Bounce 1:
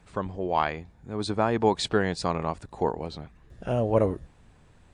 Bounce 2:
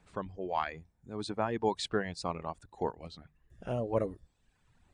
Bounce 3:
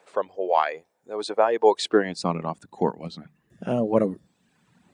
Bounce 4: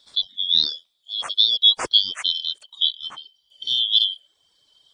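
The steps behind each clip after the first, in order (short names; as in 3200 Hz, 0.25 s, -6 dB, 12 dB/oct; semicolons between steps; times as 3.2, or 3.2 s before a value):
notches 50/100/150 Hz; reverb removal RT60 0.94 s; gain -7 dB
high-pass sweep 510 Hz -> 190 Hz, 1.63–2.28; gain +8 dB
four-band scrambler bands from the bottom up 3412; gain +2 dB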